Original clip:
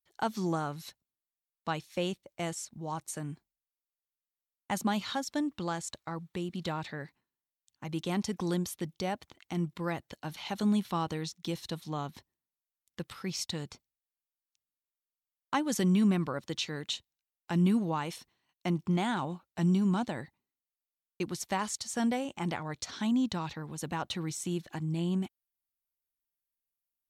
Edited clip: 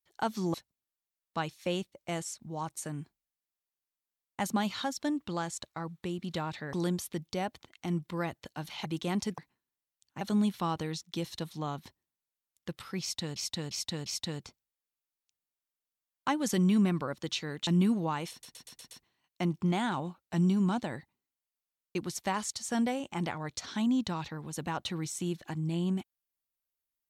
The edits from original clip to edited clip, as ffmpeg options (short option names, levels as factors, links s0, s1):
-filter_complex "[0:a]asplit=15[s0][s1][s2][s3][s4][s5][s6][s7][s8][s9][s10][s11][s12][s13][s14];[s0]atrim=end=0.542[s15];[s1]atrim=start=0.848:end=7.042[s16];[s2]atrim=start=8.398:end=10.522[s17];[s3]atrim=start=7.868:end=8.402[s18];[s4]atrim=start=7.038:end=7.872[s19];[s5]atrim=start=10.518:end=13.672[s20];[s6]atrim=start=13.318:end=13.672[s21];[s7]atrim=start=13.318:end=13.672[s22];[s8]atrim=start=13.318:end=16.932[s23];[s9]atrim=start=17.518:end=18.282[s24];[s10]atrim=start=18.158:end=18.282[s25];[s11]atrim=start=18.158:end=18.282[s26];[s12]atrim=start=18.158:end=18.282[s27];[s13]atrim=start=18.158:end=18.282[s28];[s14]atrim=start=18.158[s29];[s15][s16]acrossfade=d=0.004:c1=hsin:c2=hsin[s30];[s30][s17]acrossfade=d=0.004:c1=hsin:c2=hsin[s31];[s31][s18]acrossfade=d=0.004:c1=hsin:c2=hsin[s32];[s32][s19]acrossfade=d=0.004:c1=hsin:c2=hsin[s33];[s33][s20]acrossfade=d=0.004:c1=hsin:c2=hsin[s34];[s34][s21]acrossfade=d=0.004:c1=hsin:c2=hsin[s35];[s35][s22]acrossfade=d=0.004:c1=hsin:c2=hsin[s36];[s36][s23]acrossfade=d=0.004:c1=hsin:c2=hsin[s37];[s37][s24]acrossfade=d=0.004:c1=hsin:c2=hsin[s38];[s38][s25]acrossfade=d=0.004:c1=hsin:c2=hsin[s39];[s39][s26]acrossfade=d=0.004:c1=hsin:c2=hsin[s40];[s40][s27]acrossfade=d=0.004:c1=hsin:c2=hsin[s41];[s41][s28]acrossfade=d=0.004:c1=hsin:c2=hsin[s42];[s42][s29]acrossfade=d=0.004:c1=hsin:c2=hsin"